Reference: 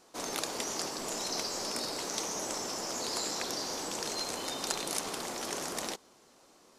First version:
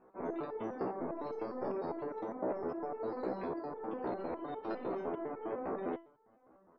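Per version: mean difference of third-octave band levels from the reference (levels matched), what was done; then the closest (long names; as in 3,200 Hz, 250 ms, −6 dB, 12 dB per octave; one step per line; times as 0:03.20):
16.5 dB: low-pass filter 1,100 Hz 12 dB per octave
gate on every frequency bin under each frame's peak −30 dB strong
dynamic equaliser 380 Hz, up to +6 dB, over −53 dBFS, Q 1
step-sequenced resonator 9.9 Hz 64–440 Hz
level +9 dB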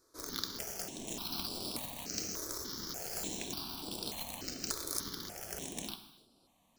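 6.5 dB: in parallel at −1.5 dB: bit reduction 5 bits
on the sum: graphic EQ with 10 bands 500 Hz −9 dB, 1,000 Hz −6 dB, 2,000 Hz −10 dB, 8,000 Hz −8 dB
reverb whose tail is shaped and stops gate 340 ms falling, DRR 7.5 dB
step-sequenced phaser 3.4 Hz 770–6,500 Hz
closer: second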